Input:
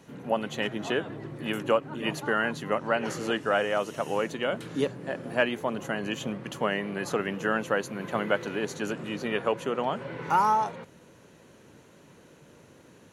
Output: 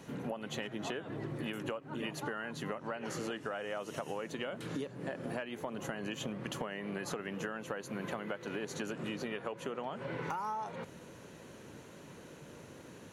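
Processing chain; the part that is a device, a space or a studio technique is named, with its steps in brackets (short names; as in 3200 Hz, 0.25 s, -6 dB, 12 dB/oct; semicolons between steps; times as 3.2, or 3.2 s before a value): serial compression, peaks first (compressor, threshold -34 dBFS, peak gain reduction 15 dB; compressor 2.5:1, threshold -39 dBFS, peak gain reduction 6.5 dB); gain +2.5 dB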